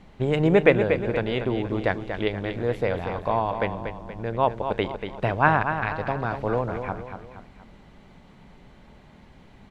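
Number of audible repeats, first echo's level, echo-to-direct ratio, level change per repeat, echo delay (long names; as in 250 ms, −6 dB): 3, −8.0 dB, −7.0 dB, −6.5 dB, 237 ms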